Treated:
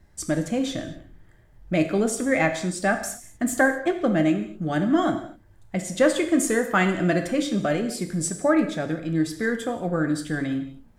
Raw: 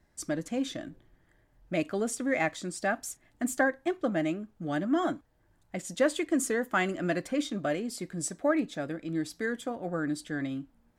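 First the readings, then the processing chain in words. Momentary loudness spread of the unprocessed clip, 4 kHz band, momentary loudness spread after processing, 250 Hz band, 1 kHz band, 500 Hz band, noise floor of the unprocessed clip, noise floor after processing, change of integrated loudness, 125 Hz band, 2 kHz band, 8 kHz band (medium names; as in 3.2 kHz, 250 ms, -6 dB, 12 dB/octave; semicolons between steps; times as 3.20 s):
8 LU, +6.5 dB, 8 LU, +8.0 dB, +6.5 dB, +7.0 dB, -68 dBFS, -54 dBFS, +7.0 dB, +10.5 dB, +6.5 dB, +6.5 dB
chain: bass shelf 110 Hz +11 dB; gated-style reverb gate 270 ms falling, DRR 6 dB; trim +5.5 dB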